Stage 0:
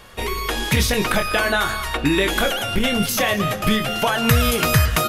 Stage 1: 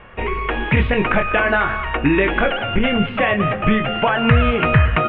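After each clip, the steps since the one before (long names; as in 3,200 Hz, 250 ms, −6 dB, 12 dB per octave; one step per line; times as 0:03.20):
Butterworth low-pass 2,800 Hz 48 dB per octave
level +3 dB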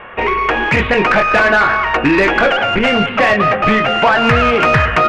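mid-hump overdrive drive 19 dB, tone 1,900 Hz, clips at −1 dBFS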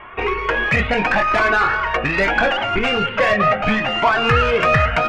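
flanger whose copies keep moving one way rising 0.75 Hz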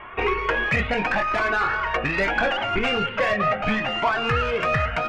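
speech leveller within 4 dB 0.5 s
level −5.5 dB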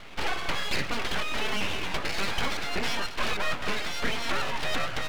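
full-wave rectification
level −3.5 dB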